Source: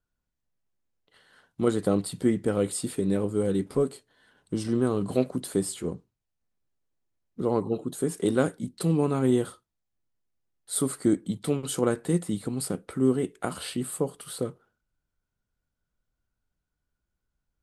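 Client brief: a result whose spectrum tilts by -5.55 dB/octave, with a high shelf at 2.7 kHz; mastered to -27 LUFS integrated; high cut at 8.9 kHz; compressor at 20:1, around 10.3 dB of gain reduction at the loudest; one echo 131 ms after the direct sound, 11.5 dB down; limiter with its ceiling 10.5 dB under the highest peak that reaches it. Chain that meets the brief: low-pass 8.9 kHz; treble shelf 2.7 kHz -4 dB; compression 20:1, threshold -27 dBFS; peak limiter -24.5 dBFS; delay 131 ms -11.5 dB; trim +9.5 dB

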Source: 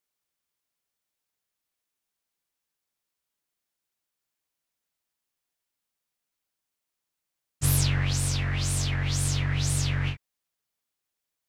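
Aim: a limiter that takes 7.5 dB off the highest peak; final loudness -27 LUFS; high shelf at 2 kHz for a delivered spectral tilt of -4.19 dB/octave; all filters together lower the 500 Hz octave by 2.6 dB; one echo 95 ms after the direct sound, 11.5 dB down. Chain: peaking EQ 500 Hz -3 dB; treble shelf 2 kHz -3 dB; peak limiter -20 dBFS; delay 95 ms -11.5 dB; trim +2 dB

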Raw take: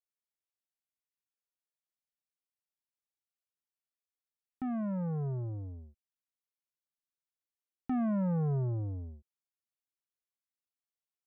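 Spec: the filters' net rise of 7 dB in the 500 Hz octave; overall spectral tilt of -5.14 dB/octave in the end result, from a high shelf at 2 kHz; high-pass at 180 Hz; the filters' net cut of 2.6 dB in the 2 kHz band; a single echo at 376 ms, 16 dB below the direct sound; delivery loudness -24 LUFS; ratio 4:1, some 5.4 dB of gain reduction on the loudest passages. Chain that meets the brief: high-pass 180 Hz; peaking EQ 500 Hz +8.5 dB; treble shelf 2 kHz +7.5 dB; peaking EQ 2 kHz -8.5 dB; compression 4:1, threshold -33 dBFS; delay 376 ms -16 dB; trim +14.5 dB

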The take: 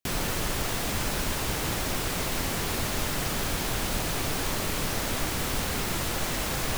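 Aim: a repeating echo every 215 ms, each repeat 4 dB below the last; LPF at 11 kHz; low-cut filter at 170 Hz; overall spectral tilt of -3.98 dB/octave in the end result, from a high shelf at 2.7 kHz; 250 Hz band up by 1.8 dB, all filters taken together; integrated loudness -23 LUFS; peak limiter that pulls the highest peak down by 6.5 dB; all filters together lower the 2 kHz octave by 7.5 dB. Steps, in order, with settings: high-pass 170 Hz; low-pass 11 kHz; peaking EQ 250 Hz +4 dB; peaking EQ 2 kHz -7 dB; treble shelf 2.7 kHz -6.5 dB; peak limiter -26 dBFS; feedback delay 215 ms, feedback 63%, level -4 dB; trim +10 dB

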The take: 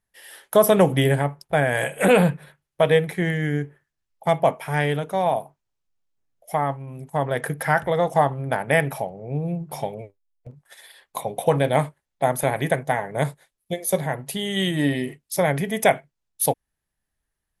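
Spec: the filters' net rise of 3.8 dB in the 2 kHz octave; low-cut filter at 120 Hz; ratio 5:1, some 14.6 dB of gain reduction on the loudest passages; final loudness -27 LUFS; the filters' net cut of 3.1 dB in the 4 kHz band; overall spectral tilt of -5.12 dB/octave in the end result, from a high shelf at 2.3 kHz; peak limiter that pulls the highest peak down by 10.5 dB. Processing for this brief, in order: high-pass 120 Hz; peaking EQ 2 kHz +7 dB; treble shelf 2.3 kHz -3.5 dB; peaking EQ 4 kHz -4.5 dB; compression 5:1, threshold -28 dBFS; trim +9.5 dB; peak limiter -15 dBFS

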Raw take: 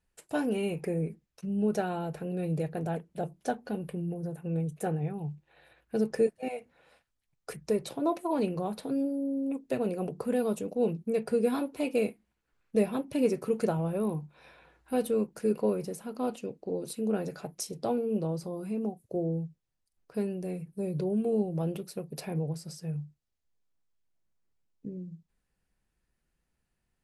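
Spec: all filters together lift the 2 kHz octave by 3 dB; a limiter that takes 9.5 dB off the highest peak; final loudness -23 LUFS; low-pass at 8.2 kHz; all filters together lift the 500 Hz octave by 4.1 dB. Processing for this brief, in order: low-pass 8.2 kHz; peaking EQ 500 Hz +4.5 dB; peaking EQ 2 kHz +4 dB; trim +8.5 dB; peak limiter -11.5 dBFS

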